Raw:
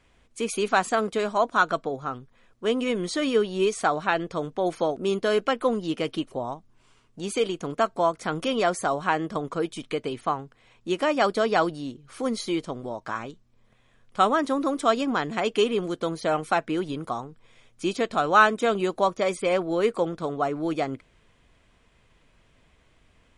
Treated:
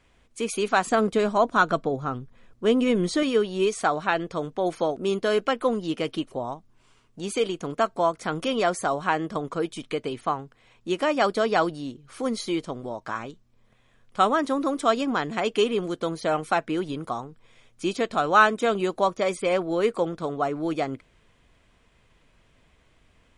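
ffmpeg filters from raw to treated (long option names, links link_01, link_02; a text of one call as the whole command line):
ffmpeg -i in.wav -filter_complex "[0:a]asettb=1/sr,asplit=3[link_01][link_02][link_03];[link_01]atrim=end=0.874[link_04];[link_02]atrim=start=0.87:end=3.23,asetpts=PTS-STARTPTS,afade=type=in:duration=0.004:curve=qsin,afade=type=out:start_time=2.356:duration=0.004:curve=qsin,lowshelf=frequency=350:gain=8.5[link_05];[link_03]atrim=start=3.226[link_06];[link_04][link_05]acrossfade=duration=0.004:curve1=hsin:curve2=qsin[link_07];[link_07][link_06]acrossfade=duration=0.004:curve1=qsin:curve2=hsin" out.wav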